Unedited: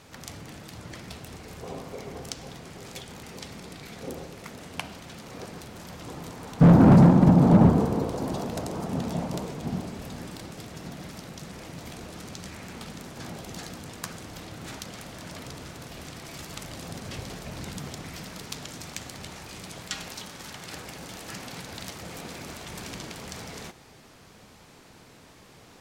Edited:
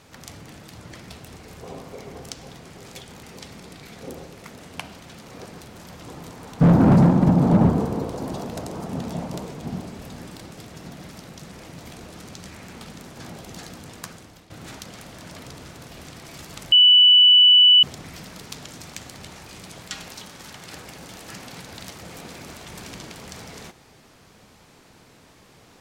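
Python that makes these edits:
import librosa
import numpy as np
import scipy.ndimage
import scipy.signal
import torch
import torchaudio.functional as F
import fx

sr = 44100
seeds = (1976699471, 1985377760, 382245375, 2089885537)

y = fx.edit(x, sr, fx.fade_out_to(start_s=13.99, length_s=0.51, floor_db=-14.0),
    fx.bleep(start_s=16.72, length_s=1.11, hz=2970.0, db=-9.0), tone=tone)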